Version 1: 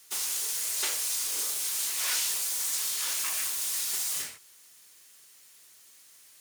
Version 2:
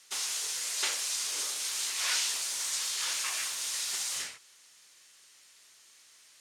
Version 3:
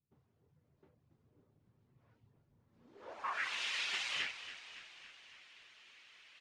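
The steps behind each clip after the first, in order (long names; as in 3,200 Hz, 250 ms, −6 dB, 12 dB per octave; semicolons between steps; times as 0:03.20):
low-pass filter 7,100 Hz 12 dB per octave; low-shelf EQ 480 Hz −7.5 dB; level +2 dB
reverb reduction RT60 0.51 s; echo with shifted repeats 280 ms, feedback 60%, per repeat −61 Hz, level −13 dB; low-pass filter sweep 130 Hz → 2,700 Hz, 0:02.67–0:03.54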